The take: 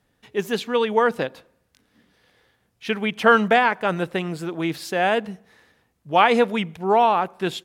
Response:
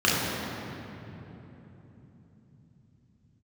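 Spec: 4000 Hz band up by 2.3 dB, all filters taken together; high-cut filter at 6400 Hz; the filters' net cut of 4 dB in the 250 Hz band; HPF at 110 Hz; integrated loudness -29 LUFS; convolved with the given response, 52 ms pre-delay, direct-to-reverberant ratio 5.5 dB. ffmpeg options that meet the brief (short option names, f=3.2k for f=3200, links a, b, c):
-filter_complex "[0:a]highpass=110,lowpass=6.4k,equalizer=f=250:t=o:g=-5,equalizer=f=4k:t=o:g=3.5,asplit=2[a][b];[1:a]atrim=start_sample=2205,adelay=52[c];[b][c]afir=irnorm=-1:irlink=0,volume=-24dB[d];[a][d]amix=inputs=2:normalize=0,volume=-8.5dB"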